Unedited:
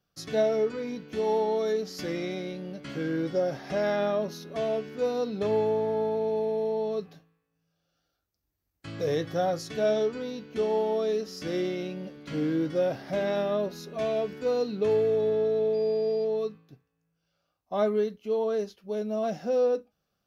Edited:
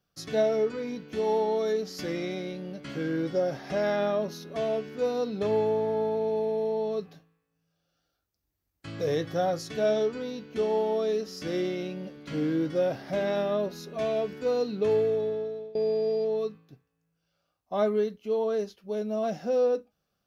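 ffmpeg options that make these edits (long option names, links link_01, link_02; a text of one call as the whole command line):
ffmpeg -i in.wav -filter_complex "[0:a]asplit=2[link_01][link_02];[link_01]atrim=end=15.75,asetpts=PTS-STARTPTS,afade=type=out:start_time=14.99:duration=0.76:silence=0.0749894[link_03];[link_02]atrim=start=15.75,asetpts=PTS-STARTPTS,afade=type=in:duration=0.004:curve=hsin:silence=0.0749894[link_04];[link_03][link_04]concat=n=2:v=0:a=1" out.wav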